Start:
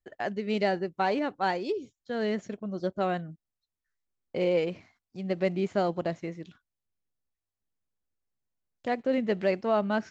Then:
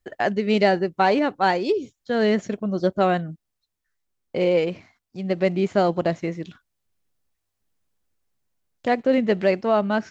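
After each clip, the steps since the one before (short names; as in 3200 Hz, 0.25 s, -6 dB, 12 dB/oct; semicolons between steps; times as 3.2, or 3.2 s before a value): vocal rider 2 s; gain +7.5 dB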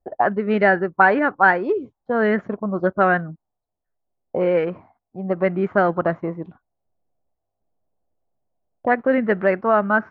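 envelope low-pass 690–1600 Hz up, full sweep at -16 dBFS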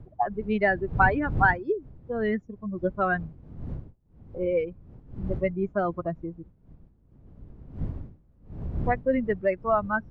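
per-bin expansion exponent 2; wind noise 130 Hz -33 dBFS; gain -3.5 dB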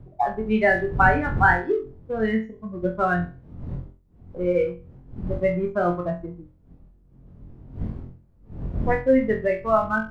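flutter echo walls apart 3.9 m, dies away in 0.34 s; in parallel at -11.5 dB: crossover distortion -35.5 dBFS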